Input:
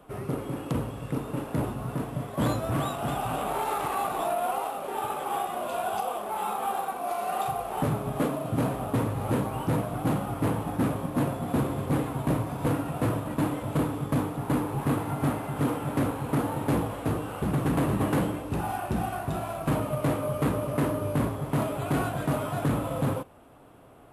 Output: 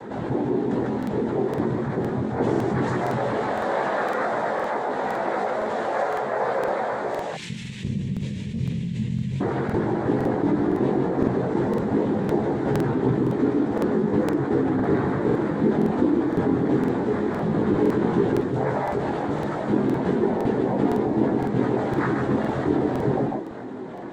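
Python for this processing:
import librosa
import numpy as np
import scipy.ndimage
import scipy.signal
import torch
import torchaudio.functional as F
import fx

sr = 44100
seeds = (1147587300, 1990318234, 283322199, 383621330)

y = fx.comb_fb(x, sr, f0_hz=280.0, decay_s=0.17, harmonics='all', damping=0.0, mix_pct=90)
y = fx.cheby1_bandstop(y, sr, low_hz=190.0, high_hz=2300.0, order=5, at=(7.19, 9.4))
y = fx.noise_vocoder(y, sr, seeds[0], bands=6)
y = fx.tilt_shelf(y, sr, db=6.0, hz=1300.0)
y = y + 10.0 ** (-5.5 / 20.0) * np.pad(y, (int(148 * sr / 1000.0), 0))[:len(y)]
y = fx.chorus_voices(y, sr, voices=6, hz=0.14, base_ms=19, depth_ms=5.0, mix_pct=50)
y = fx.buffer_crackle(y, sr, first_s=0.98, period_s=0.51, block=2048, kind='repeat')
y = fx.env_flatten(y, sr, amount_pct=50)
y = F.gain(torch.from_numpy(y), 8.5).numpy()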